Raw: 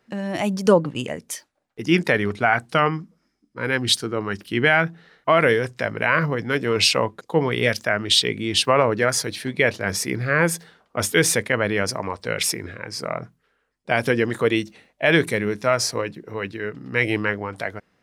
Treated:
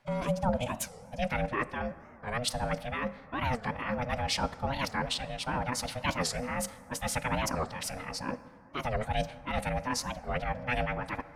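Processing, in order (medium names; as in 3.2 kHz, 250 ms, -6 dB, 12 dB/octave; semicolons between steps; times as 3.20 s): high-pass 100 Hz 24 dB/octave; dynamic bell 210 Hz, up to +3 dB, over -38 dBFS, Q 2.4; reverse; compression 12:1, threshold -27 dBFS, peak gain reduction 19 dB; reverse; ring modulator 370 Hz; time stretch by phase-locked vocoder 0.63×; random-step tremolo; on a send at -15 dB: reverberation RT60 3.0 s, pre-delay 18 ms; on the sum: warped record 45 rpm, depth 250 cents; trim +5.5 dB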